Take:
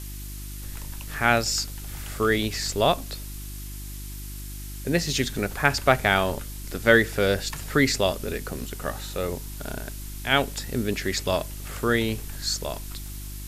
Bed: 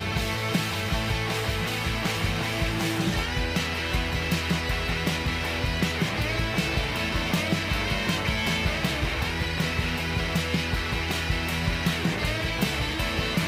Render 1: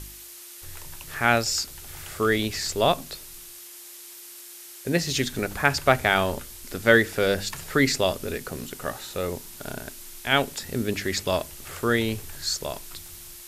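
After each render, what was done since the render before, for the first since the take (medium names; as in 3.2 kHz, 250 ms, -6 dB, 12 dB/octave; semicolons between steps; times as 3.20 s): de-hum 50 Hz, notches 6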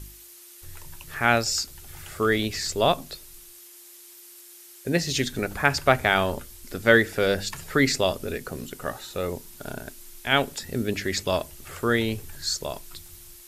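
noise reduction 6 dB, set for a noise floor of -44 dBFS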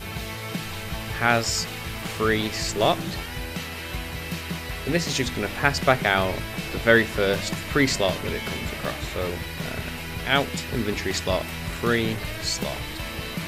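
add bed -5.5 dB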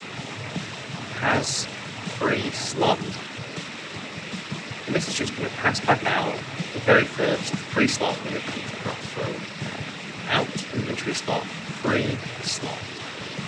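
noise-vocoded speech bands 12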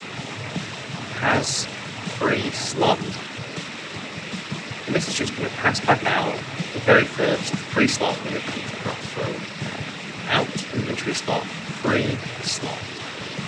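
trim +2 dB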